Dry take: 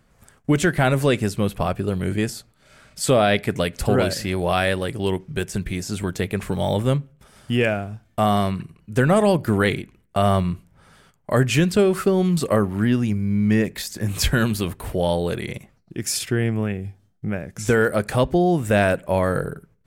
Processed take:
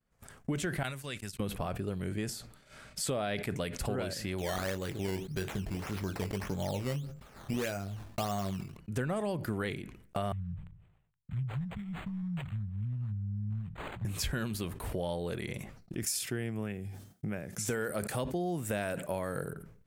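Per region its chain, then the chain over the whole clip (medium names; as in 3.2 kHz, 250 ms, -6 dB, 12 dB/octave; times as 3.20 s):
0.83–1.40 s: gate -25 dBFS, range -32 dB + amplifier tone stack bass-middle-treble 5-5-5
4.38–8.77 s: doubling 21 ms -8.5 dB + decimation with a swept rate 12× 1.7 Hz
10.32–14.05 s: inverse Chebyshev band-stop 340–2300 Hz, stop band 50 dB + treble shelf 6 kHz -7.5 dB + decimation joined by straight lines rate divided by 8×
16.03–19.53 s: high-pass 89 Hz + treble shelf 6.1 kHz +10 dB
whole clip: compression 3:1, threshold -37 dBFS; expander -47 dBFS; decay stretcher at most 72 dB/s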